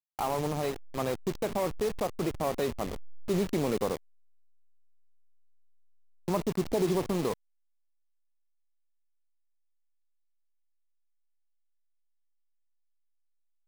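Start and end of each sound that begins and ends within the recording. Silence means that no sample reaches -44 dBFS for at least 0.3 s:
6.28–7.34

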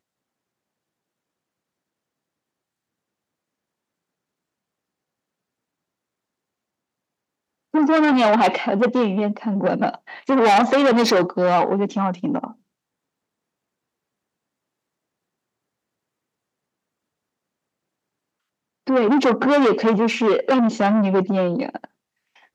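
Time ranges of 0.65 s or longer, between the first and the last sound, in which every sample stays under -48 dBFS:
12.55–18.87

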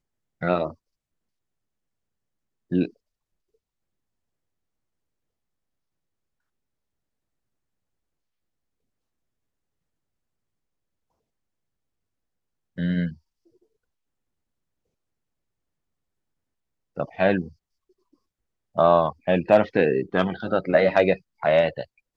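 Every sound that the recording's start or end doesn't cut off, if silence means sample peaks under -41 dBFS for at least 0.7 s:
2.71–2.89
12.78–13.14
16.97–17.49

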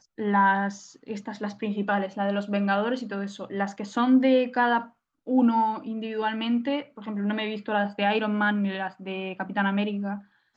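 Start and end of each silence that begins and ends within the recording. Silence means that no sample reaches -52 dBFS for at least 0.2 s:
4.91–5.27

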